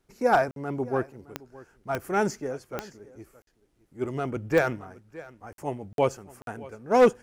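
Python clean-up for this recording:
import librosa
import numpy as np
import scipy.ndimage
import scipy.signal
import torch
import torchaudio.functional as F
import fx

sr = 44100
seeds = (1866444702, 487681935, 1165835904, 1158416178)

y = fx.fix_declip(x, sr, threshold_db=-12.0)
y = fx.fix_declick_ar(y, sr, threshold=10.0)
y = fx.fix_interpolate(y, sr, at_s=(0.51, 3.42, 5.53, 5.93, 6.42), length_ms=52.0)
y = fx.fix_echo_inverse(y, sr, delay_ms=616, level_db=-20.0)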